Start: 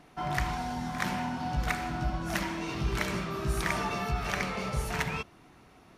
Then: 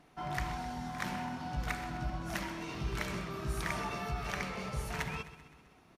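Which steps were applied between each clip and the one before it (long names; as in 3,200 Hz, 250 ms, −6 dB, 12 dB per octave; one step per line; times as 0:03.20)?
repeating echo 129 ms, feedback 57%, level −14.5 dB
level −6 dB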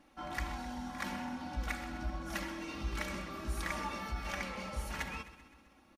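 comb filter 3.6 ms, depth 84%
level −3.5 dB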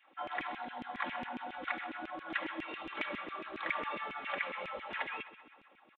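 downsampling to 8,000 Hz
auto-filter high-pass saw down 7.3 Hz 270–2,700 Hz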